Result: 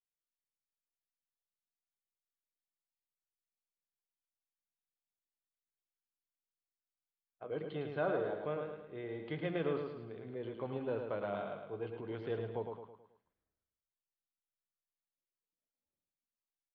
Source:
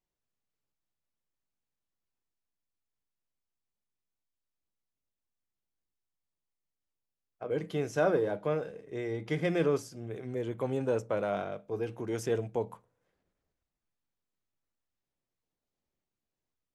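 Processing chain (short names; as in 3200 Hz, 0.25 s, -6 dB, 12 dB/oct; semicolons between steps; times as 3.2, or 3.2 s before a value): spectral noise reduction 13 dB; rippled Chebyshev low-pass 4400 Hz, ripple 3 dB; feedback echo 0.108 s, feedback 45%, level -5.5 dB; gain -6 dB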